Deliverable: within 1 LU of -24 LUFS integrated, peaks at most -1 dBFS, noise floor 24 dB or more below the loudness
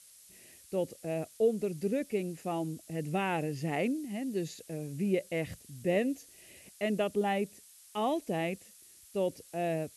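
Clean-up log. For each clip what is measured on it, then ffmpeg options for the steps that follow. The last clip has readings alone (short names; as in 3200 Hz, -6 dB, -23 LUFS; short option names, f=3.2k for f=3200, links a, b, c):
noise floor -57 dBFS; noise floor target -58 dBFS; loudness -34.0 LUFS; peak -17.5 dBFS; loudness target -24.0 LUFS
-> -af "afftdn=nr=6:nf=-57"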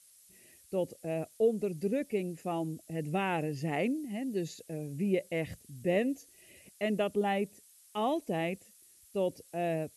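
noise floor -61 dBFS; loudness -34.0 LUFS; peak -17.5 dBFS; loudness target -24.0 LUFS
-> -af "volume=10dB"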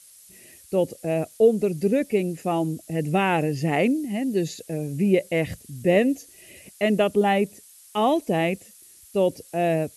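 loudness -24.0 LUFS; peak -7.5 dBFS; noise floor -51 dBFS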